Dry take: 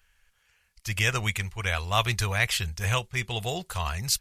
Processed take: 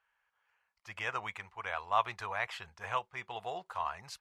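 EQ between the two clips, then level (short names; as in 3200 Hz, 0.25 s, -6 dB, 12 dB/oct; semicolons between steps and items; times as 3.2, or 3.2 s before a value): band-pass 950 Hz, Q 2; 0.0 dB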